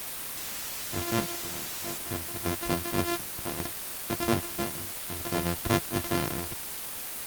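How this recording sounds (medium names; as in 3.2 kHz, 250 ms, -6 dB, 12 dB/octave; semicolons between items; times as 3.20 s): a buzz of ramps at a fixed pitch in blocks of 128 samples; random-step tremolo 2.5 Hz, depth 85%; a quantiser's noise floor 6-bit, dither triangular; Opus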